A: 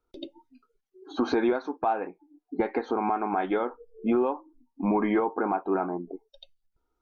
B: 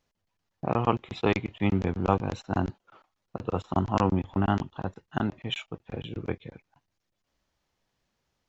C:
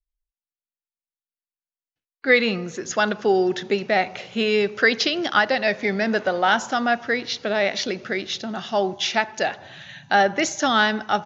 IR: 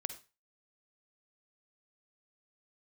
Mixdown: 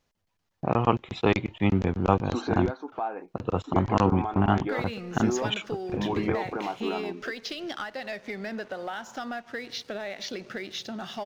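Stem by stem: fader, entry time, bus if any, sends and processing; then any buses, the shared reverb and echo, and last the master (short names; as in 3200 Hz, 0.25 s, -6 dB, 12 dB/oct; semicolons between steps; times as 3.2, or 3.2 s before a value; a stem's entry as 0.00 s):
-5.0 dB, 1.15 s, no send, dry
+2.0 dB, 0.00 s, no send, dry
-12.0 dB, 2.45 s, no send, compressor 16:1, threshold -26 dBFS, peak gain reduction 16 dB; sample leveller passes 2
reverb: off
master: dry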